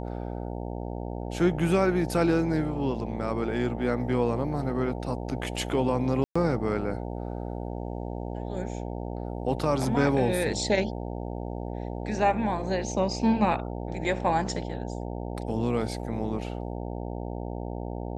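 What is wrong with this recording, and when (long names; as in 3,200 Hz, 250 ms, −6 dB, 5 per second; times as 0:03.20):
mains buzz 60 Hz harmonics 15 −34 dBFS
0:06.24–0:06.36: drop-out 115 ms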